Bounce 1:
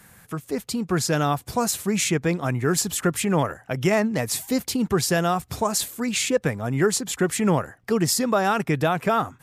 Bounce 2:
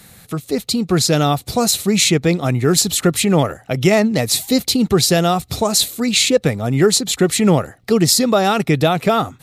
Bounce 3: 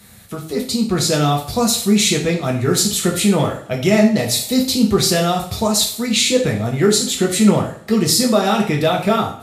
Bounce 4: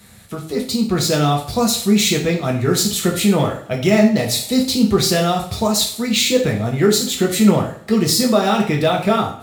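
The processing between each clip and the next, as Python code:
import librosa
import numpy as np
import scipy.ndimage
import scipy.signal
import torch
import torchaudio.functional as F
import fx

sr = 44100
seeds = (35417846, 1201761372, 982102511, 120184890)

y1 = fx.graphic_eq_31(x, sr, hz=(1000, 1600, 4000), db=(-8, -8, 10))
y1 = F.gain(torch.from_numpy(y1), 7.5).numpy()
y2 = fx.rev_double_slope(y1, sr, seeds[0], early_s=0.47, late_s=1.7, knee_db=-26, drr_db=-1.0)
y2 = F.gain(torch.from_numpy(y2), -4.5).numpy()
y3 = np.interp(np.arange(len(y2)), np.arange(len(y2))[::2], y2[::2])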